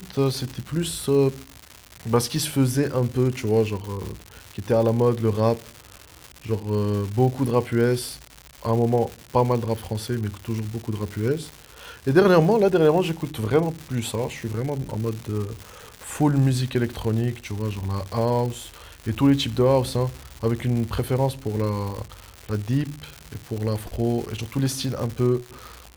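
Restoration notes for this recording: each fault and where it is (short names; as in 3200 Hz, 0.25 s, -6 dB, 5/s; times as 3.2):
crackle 270/s -29 dBFS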